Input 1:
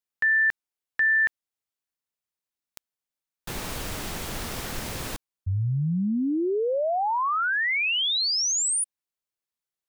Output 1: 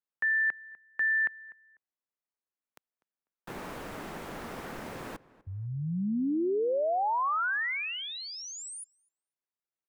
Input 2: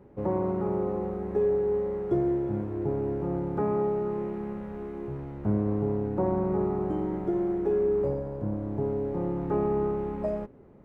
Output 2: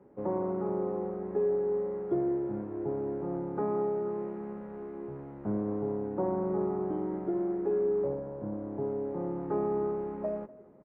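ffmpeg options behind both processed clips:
ffmpeg -i in.wav -filter_complex "[0:a]acrossover=split=160 2100:gain=0.224 1 0.2[link_01][link_02][link_03];[link_01][link_02][link_03]amix=inputs=3:normalize=0,asplit=2[link_04][link_05];[link_05]adelay=248,lowpass=frequency=2300:poles=1,volume=-19.5dB,asplit=2[link_06][link_07];[link_07]adelay=248,lowpass=frequency=2300:poles=1,volume=0.26[link_08];[link_06][link_08]amix=inputs=2:normalize=0[link_09];[link_04][link_09]amix=inputs=2:normalize=0,volume=-3dB" out.wav

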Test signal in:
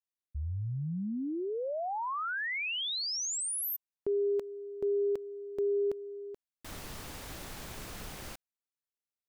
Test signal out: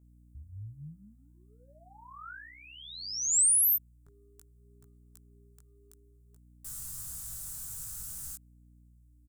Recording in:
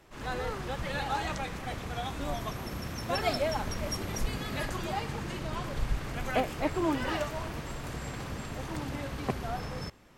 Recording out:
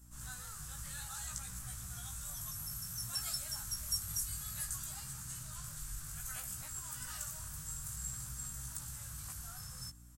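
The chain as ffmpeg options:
ffmpeg -i in.wav -filter_complex "[0:a]acrossover=split=1200[link_01][link_02];[link_01]acompressor=threshold=-39dB:ratio=6:attack=1.4:release=94:detection=peak[link_03];[link_03][link_02]amix=inputs=2:normalize=0,firequalizer=gain_entry='entry(140,0);entry(300,-30);entry(580,-19);entry(1400,-6);entry(2100,-17);entry(7800,15);entry(15000,13)':delay=0.05:min_phase=1,aeval=exprs='val(0)+0.00141*(sin(2*PI*60*n/s)+sin(2*PI*2*60*n/s)/2+sin(2*PI*3*60*n/s)/3+sin(2*PI*4*60*n/s)/4+sin(2*PI*5*60*n/s)/5)':channel_layout=same,flanger=delay=16:depth=3.6:speed=0.59" out.wav

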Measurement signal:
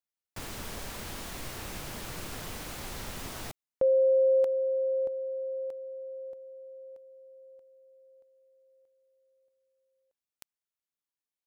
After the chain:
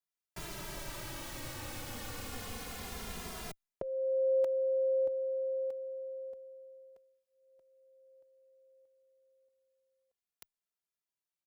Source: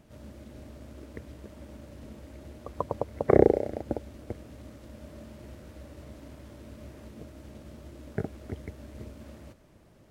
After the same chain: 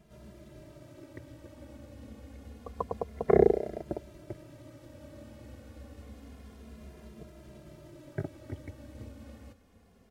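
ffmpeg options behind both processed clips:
ffmpeg -i in.wav -filter_complex "[0:a]asplit=2[link_01][link_02];[link_02]adelay=2.5,afreqshift=-0.28[link_03];[link_01][link_03]amix=inputs=2:normalize=1" out.wav

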